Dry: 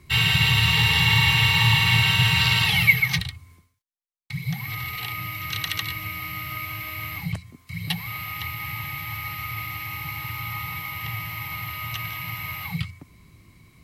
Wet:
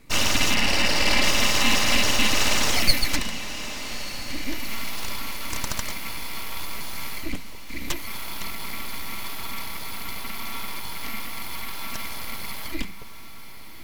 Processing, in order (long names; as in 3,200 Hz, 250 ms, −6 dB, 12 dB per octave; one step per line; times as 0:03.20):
0:00.54–0:01.24: high shelf with overshoot 3,500 Hz −13.5 dB, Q 1.5
full-wave rectification
feedback delay with all-pass diffusion 1,255 ms, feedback 53%, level −12.5 dB
level +1 dB